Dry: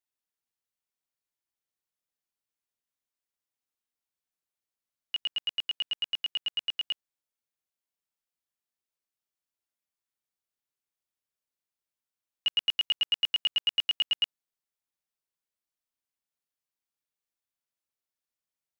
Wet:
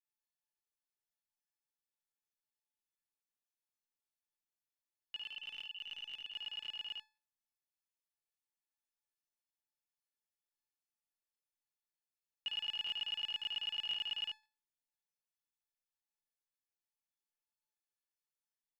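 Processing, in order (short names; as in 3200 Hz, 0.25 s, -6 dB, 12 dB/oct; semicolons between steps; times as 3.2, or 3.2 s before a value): 5.16–6.29 ring modulator 160 Hz -> 55 Hz; resonator 860 Hz, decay 0.35 s, mix 90%; early reflections 53 ms -4 dB, 74 ms -4.5 dB; crackling interface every 0.52 s, samples 1024, repeat, from 0.89; gain +6 dB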